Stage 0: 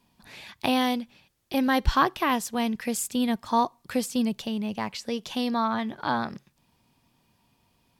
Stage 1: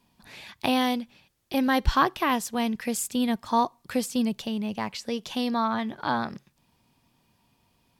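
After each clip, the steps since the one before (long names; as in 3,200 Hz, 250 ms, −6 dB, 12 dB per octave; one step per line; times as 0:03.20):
no processing that can be heard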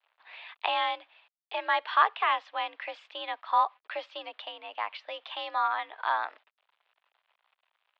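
bit reduction 10 bits
single-sideband voice off tune +64 Hz 590–3,400 Hz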